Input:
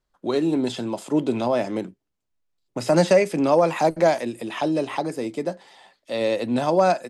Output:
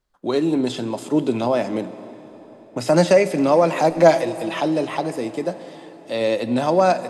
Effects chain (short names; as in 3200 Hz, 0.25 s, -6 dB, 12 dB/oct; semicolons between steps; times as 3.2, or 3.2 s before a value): 3.95–4.6 comb 6.1 ms, depth 72%; plate-style reverb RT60 4.6 s, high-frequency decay 0.8×, DRR 13 dB; gain +2 dB